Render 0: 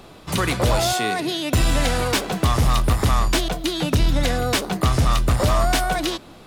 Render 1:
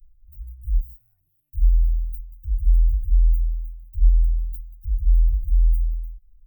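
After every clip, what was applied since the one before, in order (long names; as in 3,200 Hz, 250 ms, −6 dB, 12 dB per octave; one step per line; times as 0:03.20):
inverse Chebyshev band-stop filter 190–8,900 Hz, stop band 70 dB
level +7 dB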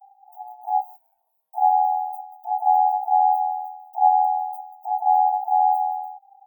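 ring modulation 790 Hz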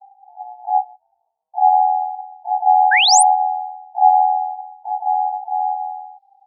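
low-pass filter sweep 780 Hz → 4,600 Hz, 0:04.63–0:05.75
sound drawn into the spectrogram rise, 0:02.91–0:03.23, 1,500–10,000 Hz −11 dBFS
level −2.5 dB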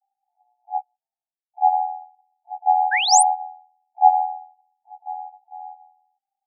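expander for the loud parts 2.5 to 1, over −29 dBFS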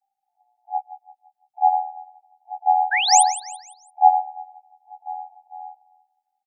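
repeating echo 169 ms, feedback 40%, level −14 dB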